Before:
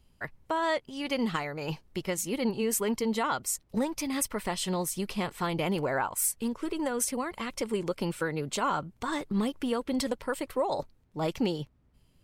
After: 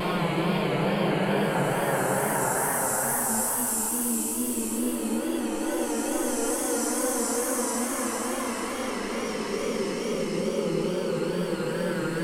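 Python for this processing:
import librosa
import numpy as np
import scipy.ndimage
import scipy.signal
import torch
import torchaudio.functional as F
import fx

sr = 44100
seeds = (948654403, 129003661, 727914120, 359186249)

y = fx.paulstretch(x, sr, seeds[0], factor=4.6, window_s=1.0, from_s=5.49)
y = fx.vibrato(y, sr, rate_hz=2.3, depth_cents=79.0)
y = y * librosa.db_to_amplitude(4.0)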